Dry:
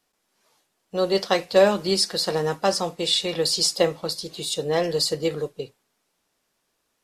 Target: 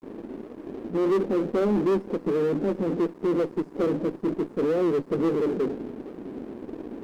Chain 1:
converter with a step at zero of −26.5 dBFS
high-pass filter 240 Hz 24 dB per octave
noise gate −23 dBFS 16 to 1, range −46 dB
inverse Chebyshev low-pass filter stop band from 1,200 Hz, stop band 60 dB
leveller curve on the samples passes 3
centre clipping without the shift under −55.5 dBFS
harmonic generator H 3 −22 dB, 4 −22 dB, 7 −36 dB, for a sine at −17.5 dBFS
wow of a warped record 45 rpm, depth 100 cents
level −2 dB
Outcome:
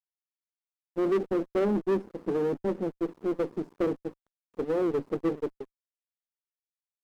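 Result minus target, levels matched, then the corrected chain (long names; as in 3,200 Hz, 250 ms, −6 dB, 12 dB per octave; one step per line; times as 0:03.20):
converter with a step at zero: distortion −7 dB
converter with a step at zero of −17.5 dBFS
high-pass filter 240 Hz 24 dB per octave
noise gate −23 dBFS 16 to 1, range −46 dB
inverse Chebyshev low-pass filter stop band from 1,200 Hz, stop band 60 dB
leveller curve on the samples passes 3
centre clipping without the shift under −55.5 dBFS
harmonic generator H 3 −22 dB, 4 −22 dB, 7 −36 dB, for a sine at −17.5 dBFS
wow of a warped record 45 rpm, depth 100 cents
level −2 dB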